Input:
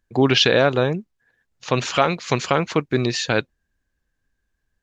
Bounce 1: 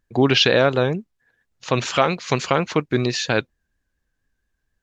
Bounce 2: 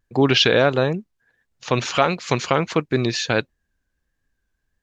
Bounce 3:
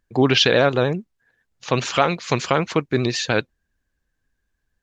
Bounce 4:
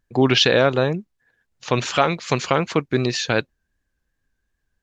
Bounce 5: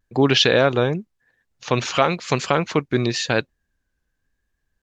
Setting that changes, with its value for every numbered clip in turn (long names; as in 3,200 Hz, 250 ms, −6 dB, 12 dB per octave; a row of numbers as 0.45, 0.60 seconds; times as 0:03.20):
pitch vibrato, speed: 4.3, 1.5, 13, 2.7, 0.95 Hertz